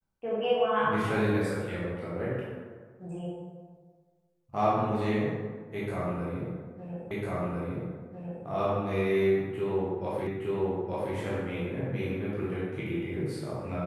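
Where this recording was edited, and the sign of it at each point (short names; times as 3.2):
7.11 repeat of the last 1.35 s
10.27 repeat of the last 0.87 s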